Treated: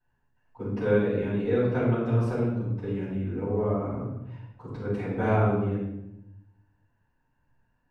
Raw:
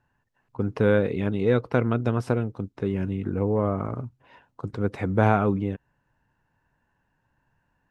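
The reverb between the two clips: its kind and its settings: shoebox room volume 300 m³, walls mixed, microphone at 7.1 m; gain -20 dB

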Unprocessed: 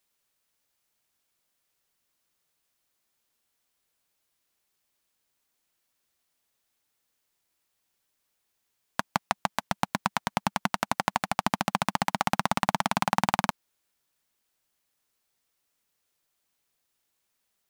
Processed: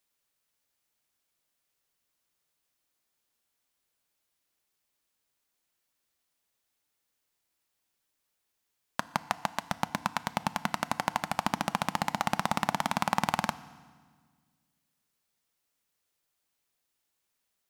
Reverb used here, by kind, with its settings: FDN reverb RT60 1.6 s, low-frequency decay 1.35×, high-frequency decay 0.9×, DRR 15 dB; gain -3 dB

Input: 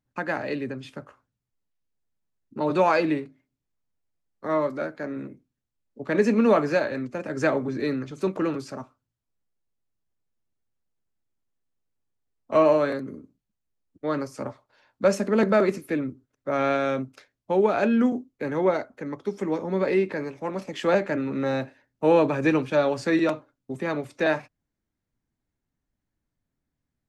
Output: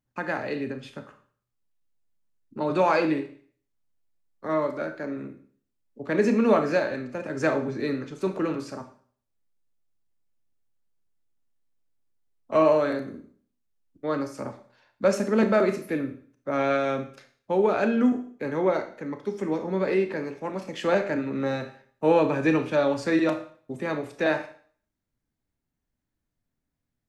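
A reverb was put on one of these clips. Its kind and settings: Schroeder reverb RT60 0.49 s, combs from 25 ms, DRR 7.5 dB; gain -1.5 dB

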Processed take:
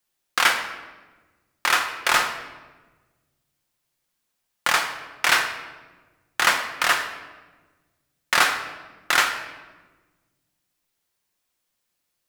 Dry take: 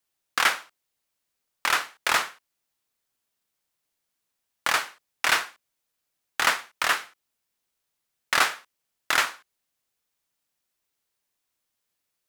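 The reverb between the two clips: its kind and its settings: shoebox room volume 950 m³, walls mixed, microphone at 0.91 m; gain +2.5 dB

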